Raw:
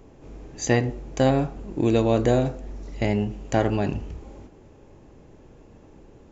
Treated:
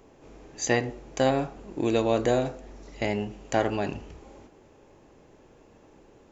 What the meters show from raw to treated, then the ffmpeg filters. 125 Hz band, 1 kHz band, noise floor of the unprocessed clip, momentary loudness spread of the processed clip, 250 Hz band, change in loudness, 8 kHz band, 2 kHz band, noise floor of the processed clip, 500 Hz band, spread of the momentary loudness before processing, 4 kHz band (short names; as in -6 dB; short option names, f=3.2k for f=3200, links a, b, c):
-9.0 dB, -1.0 dB, -51 dBFS, 18 LU, -5.5 dB, -3.5 dB, n/a, 0.0 dB, -56 dBFS, -2.5 dB, 18 LU, 0.0 dB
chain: -af "lowshelf=f=250:g=-11.5"